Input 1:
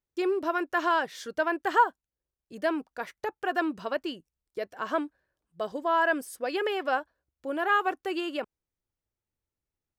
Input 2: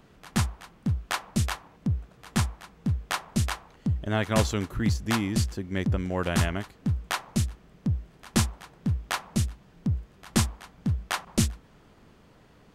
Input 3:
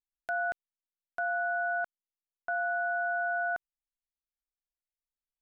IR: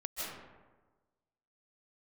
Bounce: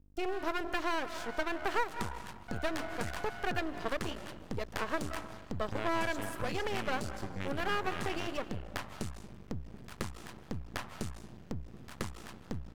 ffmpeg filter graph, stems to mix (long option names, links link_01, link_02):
-filter_complex "[0:a]bandreject=frequency=50:width_type=h:width=6,bandreject=frequency=100:width_type=h:width=6,bandreject=frequency=150:width_type=h:width=6,bandreject=frequency=200:width_type=h:width=6,bandreject=frequency=250:width_type=h:width=6,bandreject=frequency=300:width_type=h:width=6,bandreject=frequency=350:width_type=h:width=6,aeval=exprs='val(0)+0.00112*(sin(2*PI*50*n/s)+sin(2*PI*2*50*n/s)/2+sin(2*PI*3*50*n/s)/3+sin(2*PI*4*50*n/s)/4+sin(2*PI*5*50*n/s)/5)':channel_layout=same,volume=1dB,asplit=2[link_01][link_02];[link_02]volume=-15dB[link_03];[1:a]acompressor=threshold=-30dB:ratio=10,highpass=52,adelay=1650,volume=0dB,asplit=2[link_04][link_05];[link_05]volume=-11.5dB[link_06];[2:a]volume=-11dB[link_07];[3:a]atrim=start_sample=2205[link_08];[link_03][link_06]amix=inputs=2:normalize=0[link_09];[link_09][link_08]afir=irnorm=-1:irlink=0[link_10];[link_01][link_04][link_07][link_10]amix=inputs=4:normalize=0,acrossover=split=790|2800[link_11][link_12][link_13];[link_11]acompressor=threshold=-31dB:ratio=4[link_14];[link_12]acompressor=threshold=-31dB:ratio=4[link_15];[link_13]acompressor=threshold=-44dB:ratio=4[link_16];[link_14][link_15][link_16]amix=inputs=3:normalize=0,aeval=exprs='max(val(0),0)':channel_layout=same"